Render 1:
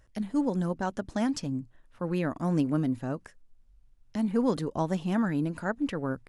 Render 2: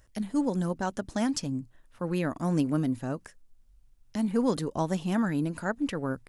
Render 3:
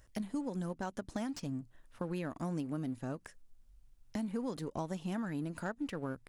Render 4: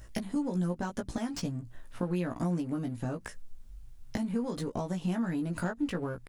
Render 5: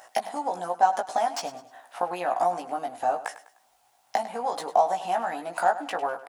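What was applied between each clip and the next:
high shelf 5300 Hz +8.5 dB
in parallel at -6 dB: crossover distortion -41.5 dBFS; on the sum: compressor 5:1, threshold -34 dBFS, peak gain reduction 15 dB; slew limiter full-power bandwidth 47 Hz; gain -1.5 dB
low shelf 200 Hz +4 dB; compressor, threshold -39 dBFS, peak gain reduction 8 dB; doubler 17 ms -3.5 dB; gain +8.5 dB
resonant high-pass 750 Hz, resonance Q 8.6; feedback echo 0.101 s, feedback 36%, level -14.5 dB; gain +6 dB

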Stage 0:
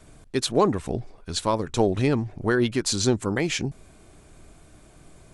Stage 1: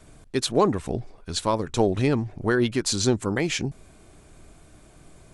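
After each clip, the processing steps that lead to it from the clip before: nothing audible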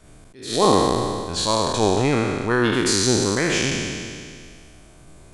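spectral trails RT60 2.16 s; attack slew limiter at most 110 dB/s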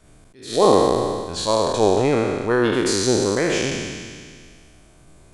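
dynamic EQ 520 Hz, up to +8 dB, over -33 dBFS, Q 1.1; gain -3 dB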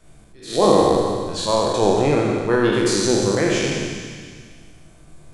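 shoebox room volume 280 m³, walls mixed, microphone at 0.77 m; gain -1 dB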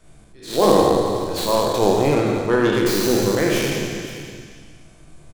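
tracing distortion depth 0.15 ms; echo 0.525 s -15 dB

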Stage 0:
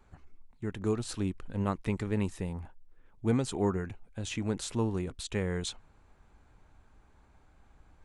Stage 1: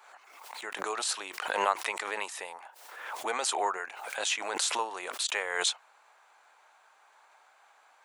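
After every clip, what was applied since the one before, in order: HPF 680 Hz 24 dB/oct; backwards sustainer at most 47 dB/s; gain +9 dB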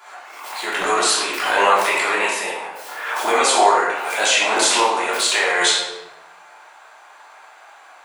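in parallel at +1 dB: limiter -21.5 dBFS, peak gain reduction 9.5 dB; on the sum: reverb RT60 1.0 s, pre-delay 3 ms, DRR -7.5 dB; gain +1.5 dB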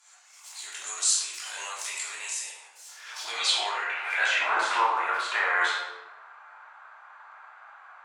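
band-pass sweep 7000 Hz -> 1300 Hz, 2.87–4.54

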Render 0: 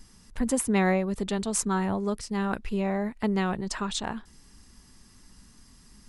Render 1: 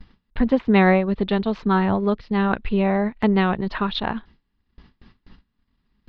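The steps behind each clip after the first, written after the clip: steep low-pass 4100 Hz 48 dB/oct; gate with hold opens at -43 dBFS; transient shaper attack 0 dB, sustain -6 dB; gain +8 dB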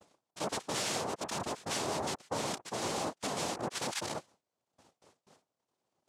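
wavefolder -19.5 dBFS; noise vocoder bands 2; low shelf 440 Hz -3.5 dB; gain -9 dB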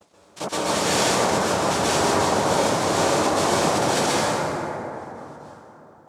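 plate-style reverb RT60 3.6 s, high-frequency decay 0.35×, pre-delay 0.11 s, DRR -9.5 dB; gain +6 dB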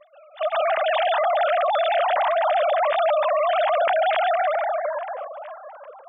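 sine-wave speech; limiter -19 dBFS, peak gain reduction 8.5 dB; gain +4.5 dB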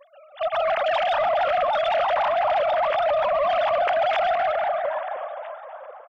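on a send: feedback echo 0.26 s, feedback 58%, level -12 dB; on the sum: soft clip -14.5 dBFS, distortion -21 dB; shaped vibrato saw up 6.2 Hz, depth 100 cents

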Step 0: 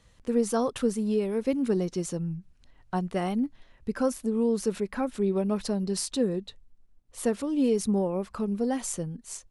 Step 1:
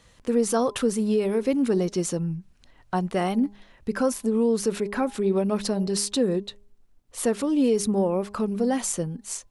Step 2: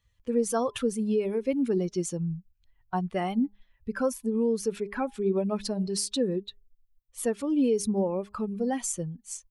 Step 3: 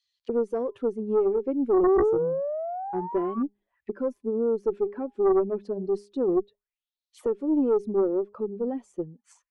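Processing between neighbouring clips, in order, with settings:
low shelf 150 Hz -7 dB; in parallel at +1.5 dB: limiter -24 dBFS, peak gain reduction 9 dB; on the sum: de-hum 203.9 Hz, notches 5
per-bin expansion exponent 1.5; gain -1.5 dB
painted sound rise, 1.83–3.43, 360–1200 Hz -26 dBFS; auto-wah 370–4600 Hz, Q 4.9, down, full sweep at -30.5 dBFS; added harmonics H 4 -14 dB, 5 -10 dB, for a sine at -16.5 dBFS; gain +2.5 dB

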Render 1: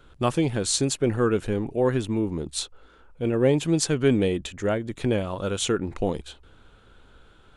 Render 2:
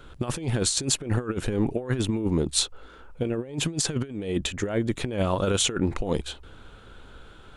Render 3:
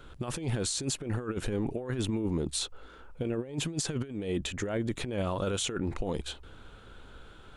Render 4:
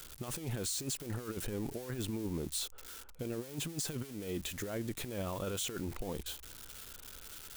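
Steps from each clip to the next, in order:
negative-ratio compressor -27 dBFS, ratio -0.5; gain +2 dB
limiter -19 dBFS, peak gain reduction 9.5 dB; gain -3 dB
switching spikes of -29 dBFS; gain -7 dB

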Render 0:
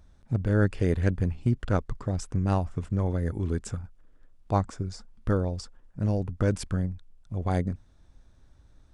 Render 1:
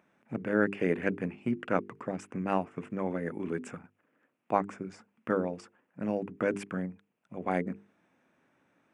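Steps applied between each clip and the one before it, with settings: HPF 190 Hz 24 dB/oct; resonant high shelf 3200 Hz -8.5 dB, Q 3; notches 50/100/150/200/250/300/350/400/450 Hz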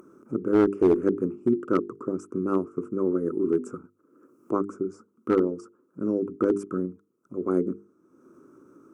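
EQ curve 200 Hz 0 dB, 370 Hz +14 dB, 760 Hz -17 dB, 1300 Hz +6 dB, 1800 Hz -25 dB, 3700 Hz -20 dB, 5900 Hz -1 dB; upward compressor, threshold -43 dBFS; one-sided clip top -15 dBFS, bottom -12 dBFS; gain +1.5 dB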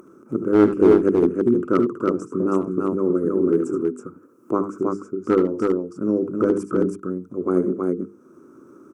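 tapped delay 67/70/76/323 ms -19/-19.5/-12/-3 dB; gain +4 dB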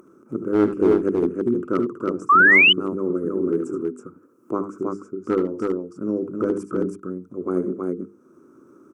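painted sound rise, 2.29–2.73, 1100–3100 Hz -9 dBFS; gain -3.5 dB

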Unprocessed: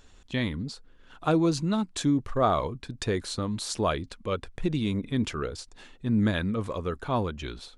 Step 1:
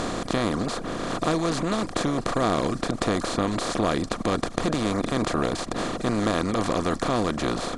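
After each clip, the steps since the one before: per-bin compression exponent 0.2; reverb removal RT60 0.58 s; gain -5 dB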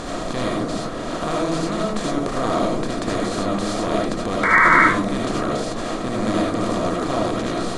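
painted sound noise, 4.43–4.83, 890–2300 Hz -15 dBFS; reverb RT60 0.55 s, pre-delay 35 ms, DRR -3.5 dB; gain -3 dB

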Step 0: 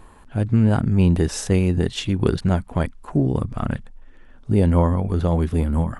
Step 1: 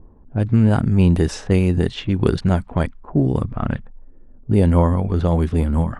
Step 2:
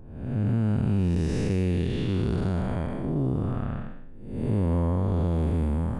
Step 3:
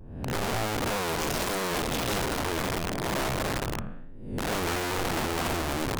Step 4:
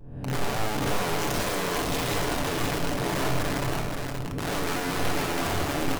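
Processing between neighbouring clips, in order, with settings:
low-pass opened by the level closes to 360 Hz, open at -15 dBFS; gain +2 dB
time blur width 0.368 s; compressor 3:1, threshold -21 dBFS, peak gain reduction 7 dB; gain -1 dB
wrapped overs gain 24 dB; vibrato 1.5 Hz 92 cents
echo 0.525 s -4.5 dB; on a send at -4 dB: reverb RT60 0.55 s, pre-delay 7 ms; on the sum: gain -1.5 dB

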